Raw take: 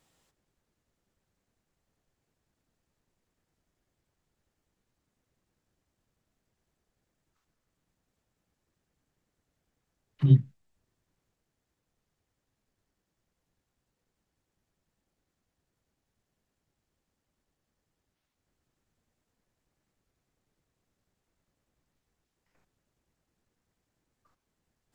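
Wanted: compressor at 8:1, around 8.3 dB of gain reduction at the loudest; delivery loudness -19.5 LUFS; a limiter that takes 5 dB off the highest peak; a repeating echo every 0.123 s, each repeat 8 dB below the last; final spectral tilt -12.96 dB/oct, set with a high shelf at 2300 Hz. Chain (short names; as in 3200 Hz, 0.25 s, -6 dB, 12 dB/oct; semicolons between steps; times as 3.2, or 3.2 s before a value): high shelf 2300 Hz -5 dB; compressor 8:1, threshold -21 dBFS; limiter -20.5 dBFS; feedback echo 0.123 s, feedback 40%, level -8 dB; gain +14.5 dB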